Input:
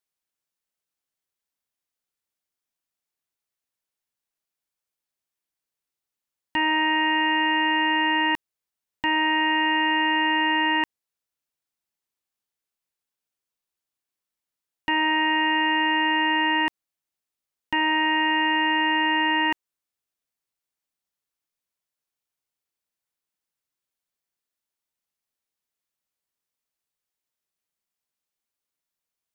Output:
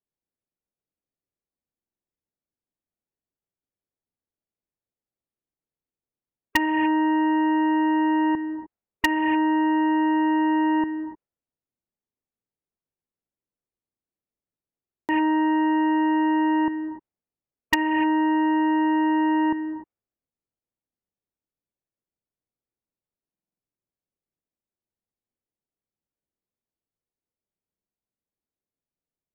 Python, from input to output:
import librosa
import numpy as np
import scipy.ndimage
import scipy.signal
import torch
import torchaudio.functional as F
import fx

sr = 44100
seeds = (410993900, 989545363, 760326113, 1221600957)

p1 = fx.env_lowpass_down(x, sr, base_hz=600.0, full_db=-22.0)
p2 = fx.spec_gate(p1, sr, threshold_db=-30, keep='strong')
p3 = fx.peak_eq(p2, sr, hz=2300.0, db=9.0, octaves=1.2)
p4 = fx.rev_gated(p3, sr, seeds[0], gate_ms=320, shape='rising', drr_db=8.0)
p5 = fx.env_lowpass(p4, sr, base_hz=450.0, full_db=-20.5)
p6 = (np.mod(10.0 ** (11.5 / 20.0) * p5 + 1.0, 2.0) - 1.0) / 10.0 ** (11.5 / 20.0)
p7 = p5 + (p6 * librosa.db_to_amplitude(-3.5))
y = fx.buffer_glitch(p7, sr, at_s=(1.77, 14.81, 23.31), block=2048, repeats=5)